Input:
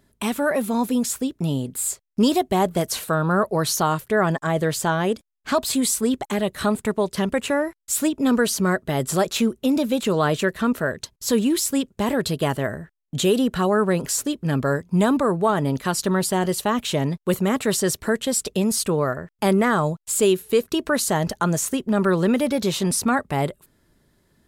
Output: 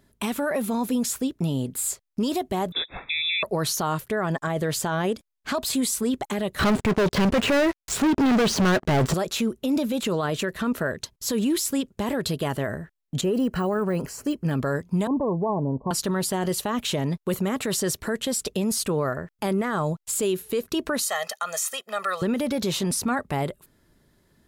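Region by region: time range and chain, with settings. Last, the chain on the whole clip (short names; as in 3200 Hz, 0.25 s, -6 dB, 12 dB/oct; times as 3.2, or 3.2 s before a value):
2.72–3.43 brick-wall FIR band-stop 370–1000 Hz + low shelf 220 Hz -6.5 dB + inverted band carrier 3700 Hz
6.59–9.14 de-esser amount 90% + LPF 6000 Hz + sample leveller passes 5
13.21–14.51 Butterworth band-stop 3600 Hz, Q 4.3 + de-esser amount 95%
15.07–15.91 Chebyshev low-pass 1100 Hz, order 10 + compressor 2:1, threshold -22 dBFS
21.02–22.22 HPF 990 Hz + comb 1.6 ms, depth 98%
whole clip: bell 8300 Hz -2.5 dB 0.22 oct; limiter -17 dBFS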